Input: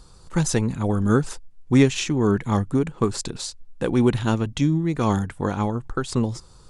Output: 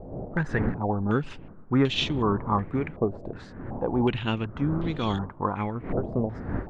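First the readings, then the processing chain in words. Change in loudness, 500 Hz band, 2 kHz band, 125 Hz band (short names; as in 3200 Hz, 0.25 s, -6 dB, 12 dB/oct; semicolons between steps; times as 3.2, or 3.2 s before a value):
-4.5 dB, -4.0 dB, -2.0 dB, -5.5 dB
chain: wind noise 260 Hz -30 dBFS; stepped low-pass 2.7 Hz 660–3500 Hz; gain -6.5 dB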